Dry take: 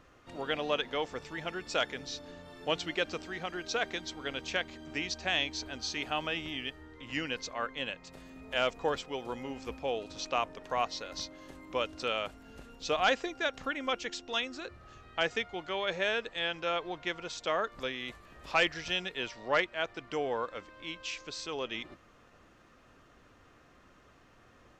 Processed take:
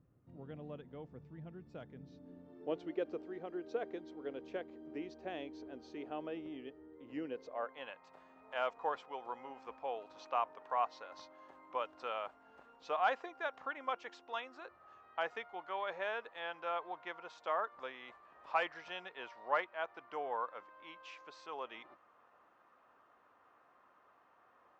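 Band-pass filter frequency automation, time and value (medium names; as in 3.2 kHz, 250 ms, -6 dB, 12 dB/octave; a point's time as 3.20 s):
band-pass filter, Q 1.9
1.90 s 140 Hz
2.76 s 390 Hz
7.31 s 390 Hz
7.85 s 950 Hz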